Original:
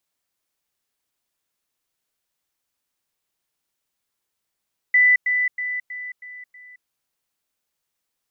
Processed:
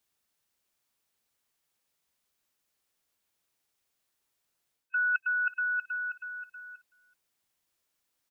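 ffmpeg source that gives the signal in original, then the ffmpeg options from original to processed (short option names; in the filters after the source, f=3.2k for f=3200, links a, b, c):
-f lavfi -i "aevalsrc='pow(10,(-11.5-6*floor(t/0.32))/20)*sin(2*PI*1990*t)*clip(min(mod(t,0.32),0.22-mod(t,0.32))/0.005,0,1)':d=1.92:s=44100"
-af "afftfilt=real='real(if(lt(b,1008),b+24*(1-2*mod(floor(b/24),2)),b),0)':imag='imag(if(lt(b,1008),b+24*(1-2*mod(floor(b/24),2)),b),0)':win_size=2048:overlap=0.75,areverse,acompressor=threshold=-27dB:ratio=6,areverse,aecho=1:1:377:0.0794"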